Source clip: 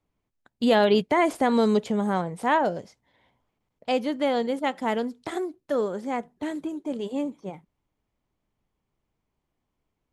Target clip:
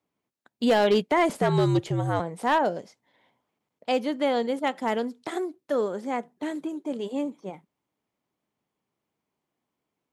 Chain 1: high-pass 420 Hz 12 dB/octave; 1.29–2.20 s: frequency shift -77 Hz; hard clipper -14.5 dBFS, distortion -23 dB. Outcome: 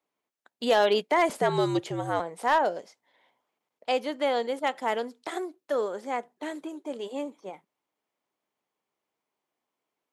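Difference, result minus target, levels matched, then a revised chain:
250 Hz band -4.5 dB
high-pass 180 Hz 12 dB/octave; 1.29–2.20 s: frequency shift -77 Hz; hard clipper -14.5 dBFS, distortion -20 dB

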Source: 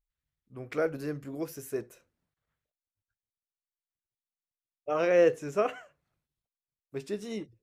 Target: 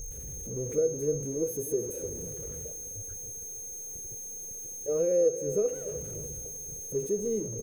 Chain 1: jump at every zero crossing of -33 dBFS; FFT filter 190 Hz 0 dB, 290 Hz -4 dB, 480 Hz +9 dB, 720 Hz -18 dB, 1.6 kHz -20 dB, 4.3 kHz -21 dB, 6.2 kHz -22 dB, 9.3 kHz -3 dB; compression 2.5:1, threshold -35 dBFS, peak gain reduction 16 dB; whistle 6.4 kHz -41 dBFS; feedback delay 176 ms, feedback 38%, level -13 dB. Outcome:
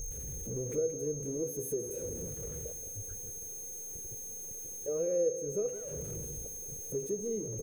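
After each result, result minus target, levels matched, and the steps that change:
echo 124 ms early; compression: peak gain reduction +5.5 dB
change: feedback delay 300 ms, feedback 38%, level -13 dB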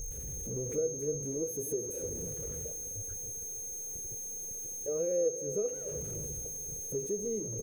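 compression: peak gain reduction +5.5 dB
change: compression 2.5:1, threshold -25.5 dBFS, peak gain reduction 10 dB

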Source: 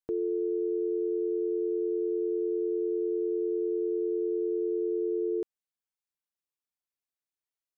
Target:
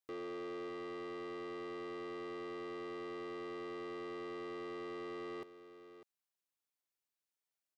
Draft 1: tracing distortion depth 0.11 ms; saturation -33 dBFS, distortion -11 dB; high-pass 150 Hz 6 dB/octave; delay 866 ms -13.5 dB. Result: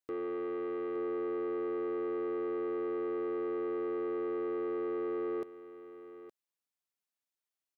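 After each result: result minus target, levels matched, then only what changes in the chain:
echo 267 ms late; saturation: distortion -5 dB
change: delay 599 ms -13.5 dB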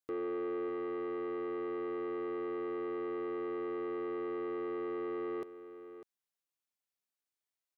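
saturation: distortion -5 dB
change: saturation -41.5 dBFS, distortion -6 dB

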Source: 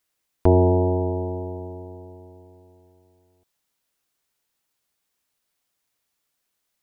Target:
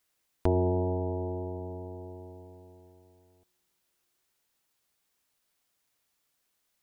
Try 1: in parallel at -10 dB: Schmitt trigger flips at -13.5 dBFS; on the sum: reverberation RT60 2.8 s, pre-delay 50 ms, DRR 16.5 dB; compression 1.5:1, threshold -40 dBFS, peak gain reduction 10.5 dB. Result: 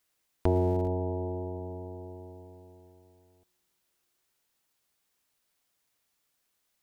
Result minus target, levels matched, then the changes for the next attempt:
Schmitt trigger: distortion -29 dB
change: Schmitt trigger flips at -5.5 dBFS

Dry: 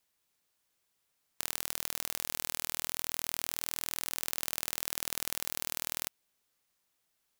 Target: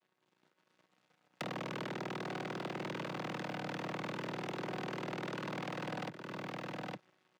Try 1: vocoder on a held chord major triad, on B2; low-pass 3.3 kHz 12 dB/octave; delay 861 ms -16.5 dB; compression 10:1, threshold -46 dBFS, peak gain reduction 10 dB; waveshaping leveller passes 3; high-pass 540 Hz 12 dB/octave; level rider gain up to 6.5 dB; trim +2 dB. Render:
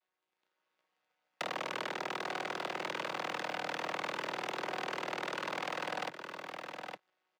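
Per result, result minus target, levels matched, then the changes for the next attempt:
250 Hz band -8.5 dB; compression: peak gain reduction -6.5 dB
change: high-pass 190 Hz 12 dB/octave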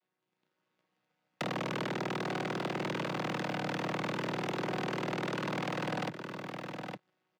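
compression: peak gain reduction -6.5 dB
change: compression 10:1, threshold -53 dBFS, peak gain reduction 16 dB

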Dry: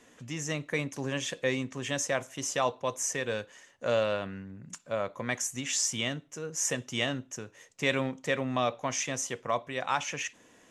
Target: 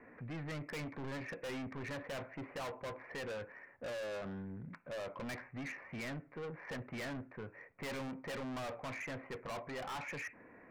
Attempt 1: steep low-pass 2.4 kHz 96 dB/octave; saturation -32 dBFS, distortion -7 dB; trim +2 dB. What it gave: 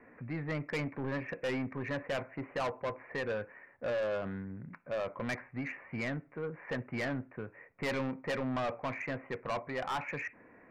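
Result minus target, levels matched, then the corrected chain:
saturation: distortion -5 dB
steep low-pass 2.4 kHz 96 dB/octave; saturation -42 dBFS, distortion -2 dB; trim +2 dB

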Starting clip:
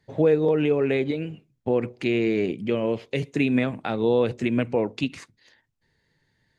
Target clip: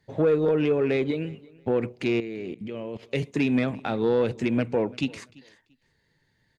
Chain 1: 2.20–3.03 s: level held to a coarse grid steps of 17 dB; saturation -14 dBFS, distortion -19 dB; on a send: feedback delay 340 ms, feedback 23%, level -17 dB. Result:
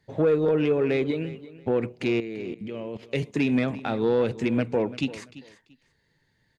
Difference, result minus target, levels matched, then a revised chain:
echo-to-direct +6.5 dB
2.20–3.03 s: level held to a coarse grid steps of 17 dB; saturation -14 dBFS, distortion -19 dB; on a send: feedback delay 340 ms, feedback 23%, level -23.5 dB

